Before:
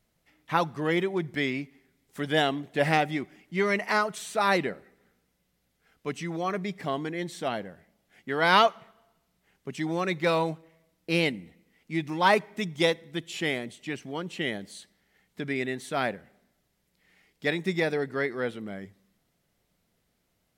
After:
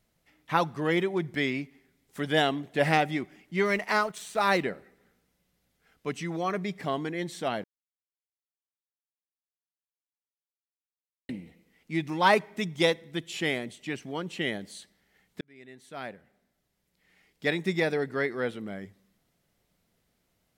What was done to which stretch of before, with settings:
3.65–4.63 G.711 law mismatch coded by A
7.64–11.29 mute
15.41–17.48 fade in

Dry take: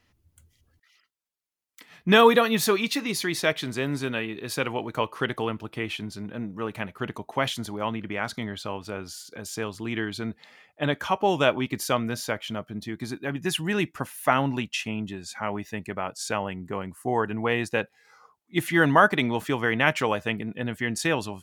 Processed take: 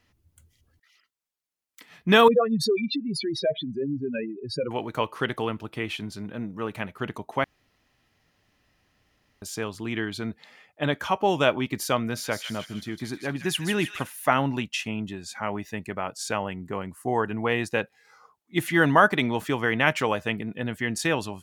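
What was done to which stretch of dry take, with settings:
2.28–4.71 spectral contrast raised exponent 3.7
7.44–9.42 room tone
12.01–14.08 thin delay 0.156 s, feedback 47%, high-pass 2000 Hz, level -5.5 dB

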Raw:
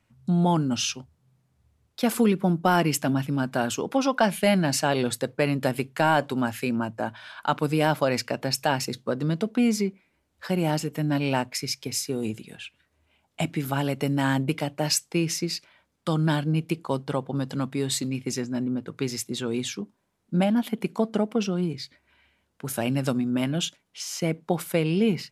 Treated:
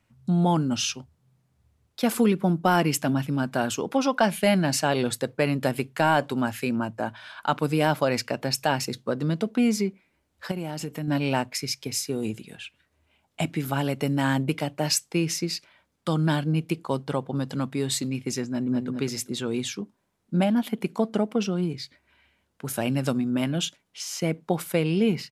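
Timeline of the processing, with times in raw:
10.51–11.08 compressor 12:1, threshold -26 dBFS
18.48–18.88 echo throw 0.2 s, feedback 25%, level -5 dB

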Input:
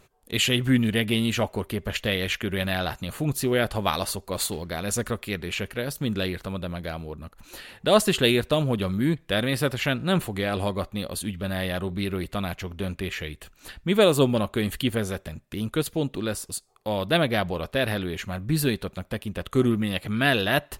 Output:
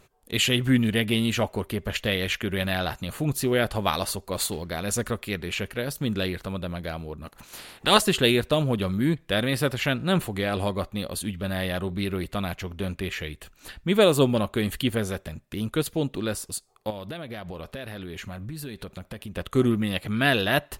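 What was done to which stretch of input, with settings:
7.24–7.99 spectral limiter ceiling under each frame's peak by 17 dB
16.9–19.35 compressor 10:1, threshold -32 dBFS

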